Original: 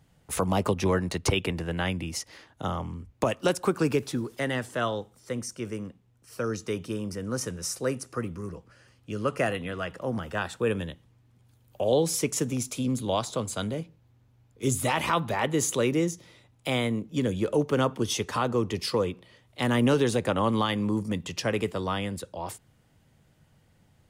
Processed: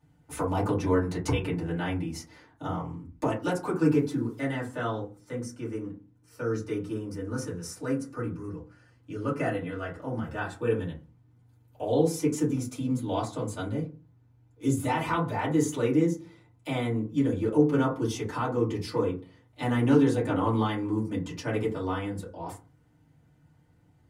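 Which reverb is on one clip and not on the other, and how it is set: FDN reverb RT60 0.33 s, low-frequency decay 1.45×, high-frequency decay 0.35×, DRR -8.5 dB; gain -12.5 dB

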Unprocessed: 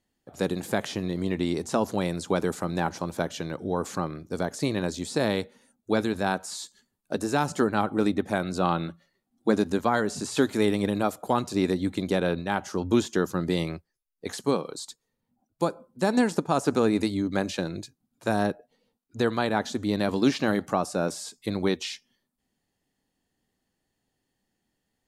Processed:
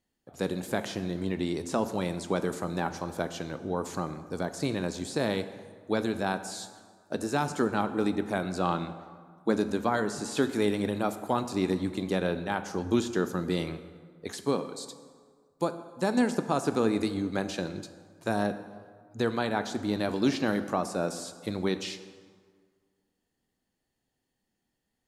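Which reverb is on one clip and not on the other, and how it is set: plate-style reverb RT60 1.8 s, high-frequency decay 0.6×, DRR 10 dB; gain -3.5 dB

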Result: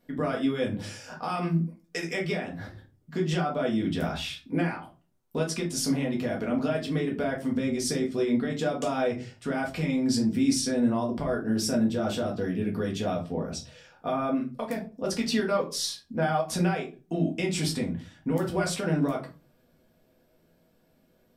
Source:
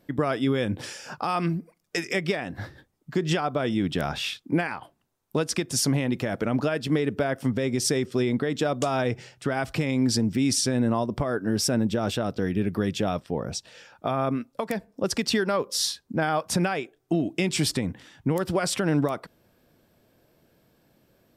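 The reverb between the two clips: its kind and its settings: shoebox room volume 140 m³, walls furnished, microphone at 1.8 m; gain -7.5 dB

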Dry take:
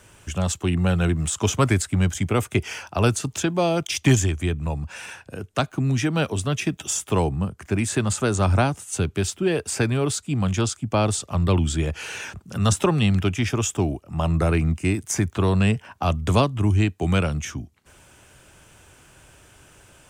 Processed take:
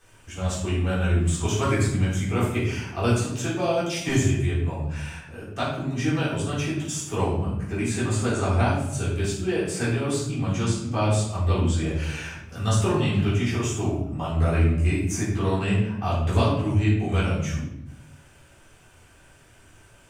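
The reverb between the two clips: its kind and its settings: shoebox room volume 240 m³, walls mixed, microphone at 3.7 m; gain -14 dB

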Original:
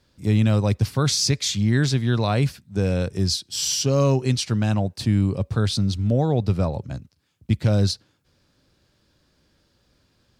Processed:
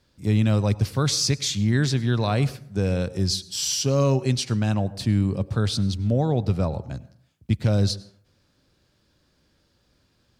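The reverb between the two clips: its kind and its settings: plate-style reverb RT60 0.61 s, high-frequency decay 0.5×, pre-delay 85 ms, DRR 18.5 dB; gain -1.5 dB

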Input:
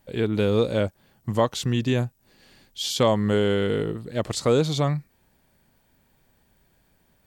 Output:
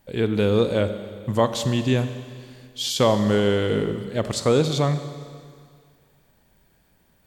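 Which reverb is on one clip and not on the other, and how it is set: Schroeder reverb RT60 2.1 s, combs from 31 ms, DRR 9.5 dB; gain +1.5 dB

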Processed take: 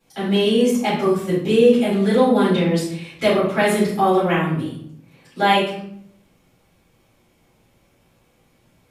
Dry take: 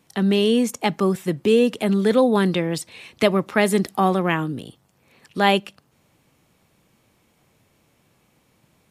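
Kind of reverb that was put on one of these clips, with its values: shoebox room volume 120 m³, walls mixed, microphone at 4 m; gain -11.5 dB

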